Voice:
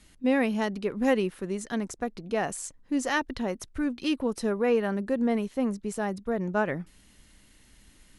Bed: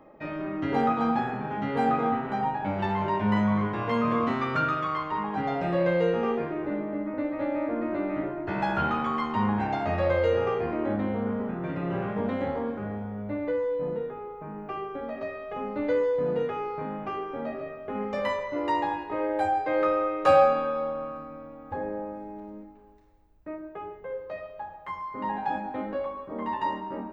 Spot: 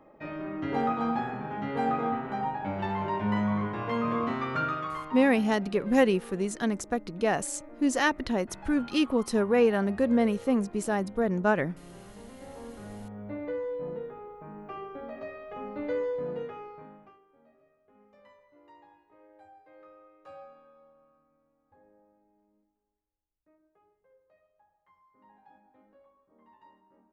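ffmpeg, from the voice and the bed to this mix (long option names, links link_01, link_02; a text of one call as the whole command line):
ffmpeg -i stem1.wav -i stem2.wav -filter_complex "[0:a]adelay=4900,volume=2dB[link_01];[1:a]volume=10dB,afade=type=out:start_time=4.65:duration=0.99:silence=0.16788,afade=type=in:start_time=12.37:duration=0.93:silence=0.211349,afade=type=out:start_time=16.09:duration=1.1:silence=0.0630957[link_02];[link_01][link_02]amix=inputs=2:normalize=0" out.wav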